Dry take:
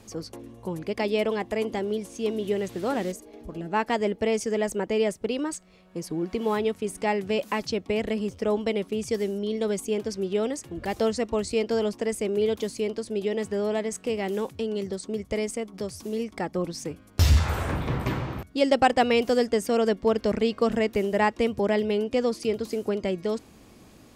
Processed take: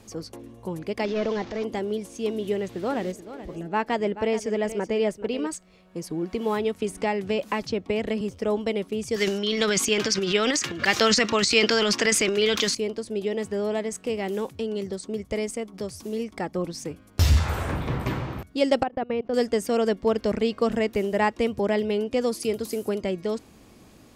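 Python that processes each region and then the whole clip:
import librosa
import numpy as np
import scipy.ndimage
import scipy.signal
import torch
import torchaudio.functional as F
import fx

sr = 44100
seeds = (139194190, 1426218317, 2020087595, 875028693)

y = fx.chain(x, sr, fx.delta_mod(bps=32000, step_db=-39.0),
    fx.transient(attack_db=-8, sustain_db=4), at=(1.05, 1.64))
y = fx.chain(y, sr, fx.peak_eq(hz=11000.0, db=-7.0, octaves=1.5),
    fx.echo_single(ms=430, db=-13.0), at=(2.56, 5.47))
y = fx.chain(y, sr, fx.high_shelf(hz=8900.0, db=-8.0),
    fx.band_squash(depth_pct=70), at=(6.8, 8.21))
y = fx.chain(y, sr, fx.highpass(hz=130.0, slope=12),
    fx.band_shelf(hz=2800.0, db=14.0, octaves=2.9),
    fx.transient(attack_db=3, sustain_db=11), at=(9.16, 12.75))
y = fx.chain(y, sr, fx.level_steps(step_db=23),
    fx.spacing_loss(db_at_10k=42), at=(18.83, 19.34))
y = fx.chain(y, sr, fx.highpass(hz=48.0, slope=12),
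    fx.peak_eq(hz=12000.0, db=12.0, octaves=1.1), at=(22.21, 23.01))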